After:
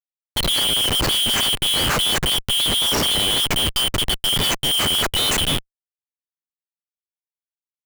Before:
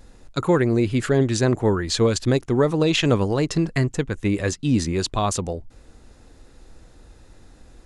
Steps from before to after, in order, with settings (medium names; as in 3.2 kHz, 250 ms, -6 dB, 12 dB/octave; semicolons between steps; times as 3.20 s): four frequency bands reordered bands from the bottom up 3412; Schmitt trigger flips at -27.5 dBFS; upward expansion 1.5:1, over -43 dBFS; trim +4 dB